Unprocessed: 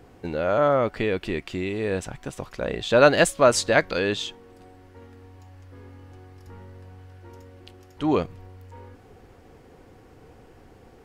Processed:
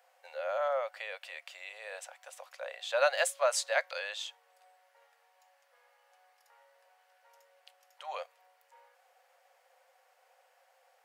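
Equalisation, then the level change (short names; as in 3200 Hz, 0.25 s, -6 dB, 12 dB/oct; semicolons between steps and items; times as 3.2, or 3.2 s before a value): rippled Chebyshev high-pass 520 Hz, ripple 3 dB; high shelf 7100 Hz +9 dB; -9.0 dB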